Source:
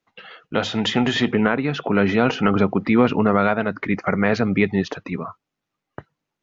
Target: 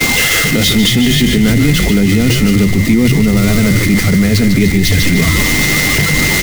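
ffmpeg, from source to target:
ffmpeg -i in.wav -filter_complex "[0:a]aeval=exprs='val(0)+0.5*0.106*sgn(val(0))':channel_layout=same,aeval=exprs='val(0)+0.0794*sin(2*PI*2100*n/s)':channel_layout=same,agate=range=-33dB:threshold=-17dB:ratio=3:detection=peak,acrossover=split=360|3000[link_01][link_02][link_03];[link_02]acompressor=threshold=-34dB:ratio=3[link_04];[link_01][link_04][link_03]amix=inputs=3:normalize=0,equalizer=frequency=990:width=0.79:gain=-8,asplit=7[link_05][link_06][link_07][link_08][link_09][link_10][link_11];[link_06]adelay=148,afreqshift=-98,volume=-5.5dB[link_12];[link_07]adelay=296,afreqshift=-196,volume=-12.2dB[link_13];[link_08]adelay=444,afreqshift=-294,volume=-19dB[link_14];[link_09]adelay=592,afreqshift=-392,volume=-25.7dB[link_15];[link_10]adelay=740,afreqshift=-490,volume=-32.5dB[link_16];[link_11]adelay=888,afreqshift=-588,volume=-39.2dB[link_17];[link_05][link_12][link_13][link_14][link_15][link_16][link_17]amix=inputs=7:normalize=0,areverse,acompressor=threshold=-31dB:ratio=6,areverse,alimiter=level_in=26.5dB:limit=-1dB:release=50:level=0:latency=1,volume=-1dB" out.wav

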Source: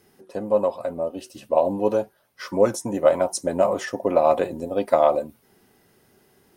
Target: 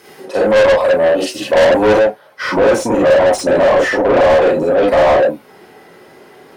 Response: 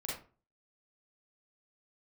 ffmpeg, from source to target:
-filter_complex "[1:a]atrim=start_sample=2205,afade=type=out:start_time=0.13:duration=0.01,atrim=end_sample=6174[link_01];[0:a][link_01]afir=irnorm=-1:irlink=0,asetnsamples=nb_out_samples=441:pad=0,asendcmd='1.99 lowpass f 1400',asplit=2[link_02][link_03];[link_03]highpass=frequency=720:poles=1,volume=32dB,asoftclip=type=tanh:threshold=-1dB[link_04];[link_02][link_04]amix=inputs=2:normalize=0,lowpass=frequency=4400:poles=1,volume=-6dB,volume=-1.5dB"

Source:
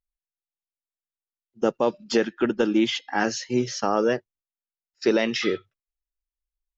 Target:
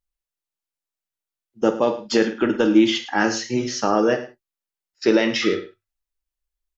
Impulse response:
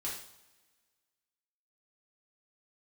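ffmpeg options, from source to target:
-filter_complex "[0:a]aecho=1:1:107:0.178,asplit=2[link_01][link_02];[1:a]atrim=start_sample=2205,atrim=end_sample=3528[link_03];[link_02][link_03]afir=irnorm=-1:irlink=0,volume=-3dB[link_04];[link_01][link_04]amix=inputs=2:normalize=0"

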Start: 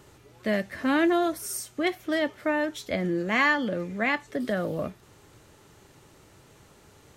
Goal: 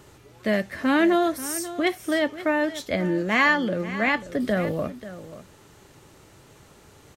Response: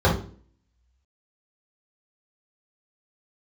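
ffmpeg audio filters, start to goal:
-filter_complex "[0:a]asettb=1/sr,asplit=3[link_01][link_02][link_03];[link_01]atrim=end=4.074[link_04];[link_02]atrim=start=4.07:end=4.72,asetpts=PTS-STARTPTS,afade=type=in:duration=0.004:curve=qsin,afade=type=out:start_time=0.646:duration=0.004:curve=qsin,lowshelf=frequency=95:gain=11[link_05];[link_03]atrim=start=4.716[link_06];[link_04][link_05]acrossfade=duration=0.004:curve1=hsin:curve2=qsin[link_07];[link_07][link_06]acrossfade=duration=0.004:curve1=qsin:curve2=hsin,aecho=1:1:537:0.188,volume=3dB"

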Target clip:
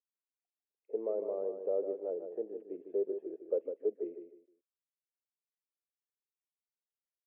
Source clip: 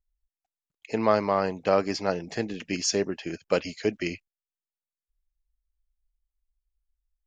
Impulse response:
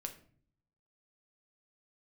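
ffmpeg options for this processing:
-af "aresample=8000,asoftclip=type=tanh:threshold=-16dB,aresample=44100,asuperpass=centerf=450:order=4:qfactor=2.4,aecho=1:1:153|306|459:0.398|0.107|0.029,volume=-3.5dB"

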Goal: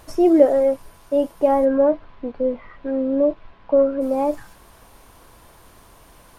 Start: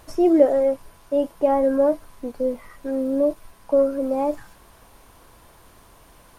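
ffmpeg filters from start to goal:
ffmpeg -i in.wav -filter_complex "[0:a]asplit=3[link_01][link_02][link_03];[link_01]afade=type=out:start_time=1.64:duration=0.02[link_04];[link_02]lowpass=frequency=3500:width=0.5412,lowpass=frequency=3500:width=1.3066,afade=type=in:start_time=1.64:duration=0.02,afade=type=out:start_time=4:duration=0.02[link_05];[link_03]afade=type=in:start_time=4:duration=0.02[link_06];[link_04][link_05][link_06]amix=inputs=3:normalize=0,volume=2dB" out.wav

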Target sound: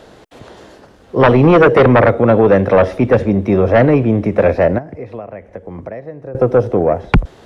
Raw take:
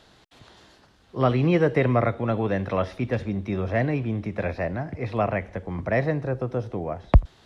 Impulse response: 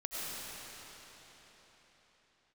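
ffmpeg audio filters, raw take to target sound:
-filter_complex "[0:a]equalizer=frequency=250:width_type=o:width=1:gain=3,equalizer=frequency=500:width_type=o:width=1:gain=9,equalizer=frequency=4000:width_type=o:width=1:gain=-6,asettb=1/sr,asplit=3[link_01][link_02][link_03];[link_01]atrim=end=4.784[link_04];[link_02]atrim=start=4.78:end=6.35,asetpts=PTS-STARTPTS,afade=type=in:duration=0.004:curve=qsin,afade=type=out:start_time=1.566:duration=0.004:curve=qsin,acompressor=threshold=-36dB:ratio=16[link_05];[link_03]atrim=start=6.346[link_06];[link_04][link_05]acrossfade=duration=0.004:curve1=hsin:curve2=qsin[link_07];[link_07][link_06]acrossfade=duration=0.004:curve1=qsin:curve2=hsin,aeval=exprs='0.668*sin(PI/2*2.24*val(0)/0.668)':channel_layout=same"

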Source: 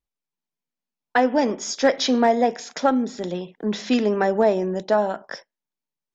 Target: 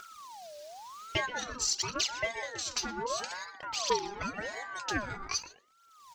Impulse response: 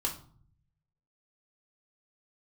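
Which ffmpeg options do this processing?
-filter_complex "[0:a]acompressor=mode=upward:threshold=-26dB:ratio=2.5,equalizer=frequency=5000:width_type=o:width=1.2:gain=14.5,asplit=2[link_01][link_02];[link_02]adelay=123,lowpass=frequency=920:poles=1,volume=-6.5dB,asplit=2[link_03][link_04];[link_04]adelay=123,lowpass=frequency=920:poles=1,volume=0.32,asplit=2[link_05][link_06];[link_06]adelay=123,lowpass=frequency=920:poles=1,volume=0.32,asplit=2[link_07][link_08];[link_08]adelay=123,lowpass=frequency=920:poles=1,volume=0.32[link_09];[link_03][link_05][link_07][link_09]amix=inputs=4:normalize=0[link_10];[link_01][link_10]amix=inputs=2:normalize=0,acompressor=threshold=-25dB:ratio=4,equalizer=frequency=420:width_type=o:width=0.71:gain=-12,aphaser=in_gain=1:out_gain=1:delay=5:decay=0.7:speed=0.51:type=triangular,aeval=exprs='val(0)*sin(2*PI*980*n/s+980*0.4/0.86*sin(2*PI*0.86*n/s))':channel_layout=same,volume=-5dB"

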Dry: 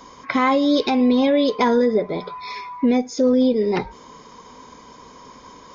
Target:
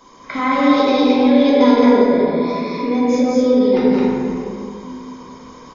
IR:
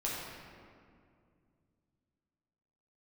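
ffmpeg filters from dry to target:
-filter_complex "[0:a]aecho=1:1:172|215.7:0.562|0.891[link_01];[1:a]atrim=start_sample=2205[link_02];[link_01][link_02]afir=irnorm=-1:irlink=0,volume=-4dB"

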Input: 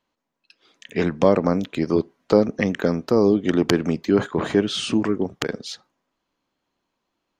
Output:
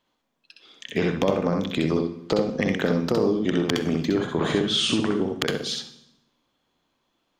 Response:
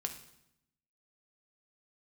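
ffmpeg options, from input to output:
-filter_complex "[0:a]equalizer=frequency=3400:width=7.5:gain=7.5,acompressor=threshold=-22dB:ratio=6,aeval=exprs='clip(val(0),-1,0.2)':channel_layout=same,asplit=2[link_01][link_02];[1:a]atrim=start_sample=2205,adelay=63[link_03];[link_02][link_03]afir=irnorm=-1:irlink=0,volume=-2dB[link_04];[link_01][link_04]amix=inputs=2:normalize=0,volume=2dB"

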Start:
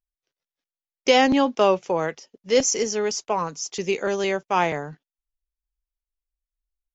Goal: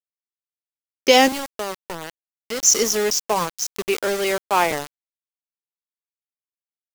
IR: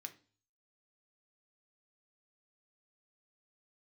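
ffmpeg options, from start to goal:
-filter_complex "[0:a]asettb=1/sr,asplit=3[link_01][link_02][link_03];[link_01]atrim=end=1.284[link_04];[link_02]atrim=start=1.28:end=2.63,asetpts=PTS-STARTPTS,afade=type=in:duration=0.004:curve=qsin,afade=type=out:start_time=1.346:duration=0.004:curve=qsin,acompressor=threshold=-34dB:ratio=2.5[link_05];[link_03]atrim=start=2.626[link_06];[link_04][link_05]acrossfade=duration=0.004:curve1=hsin:curve2=qsin[link_07];[link_07][link_06]acrossfade=duration=0.004:curve1=qsin:curve2=hsin,asettb=1/sr,asplit=3[link_08][link_09][link_10];[link_08]atrim=end=3.674[link_11];[link_09]atrim=start=3.67:end=4.71,asetpts=PTS-STARTPTS,afade=type=in:duration=0.004:curve=qsin,afade=type=out:start_time=1.036:duration=0.004:curve=qsin,acrossover=split=260 4700:gain=0.251 1 0.0631[link_12][link_13][link_14];[link_12][link_13][link_14]amix=inputs=3:normalize=0[link_15];[link_10]atrim=start=4.706[link_16];[link_11][link_15]acrossfade=duration=0.004:curve1=hsin:curve2=qsin[link_17];[link_17][link_16]acrossfade=duration=0.004:curve1=qsin:curve2=hsin,aeval=exprs='val(0)*gte(abs(val(0)),0.0398)':channel_layout=same,adynamicequalizer=threshold=0.0158:dfrequency=4000:dqfactor=0.7:tfrequency=4000:tqfactor=0.7:attack=5:release=100:ratio=0.375:range=3.5:mode=boostabove:tftype=highshelf,volume=3dB"

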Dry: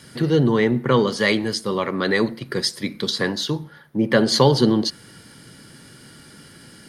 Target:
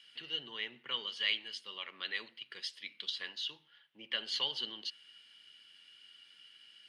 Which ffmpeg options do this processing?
ffmpeg -i in.wav -af "bandpass=frequency=2900:width_type=q:width=8:csg=0,volume=1dB" out.wav

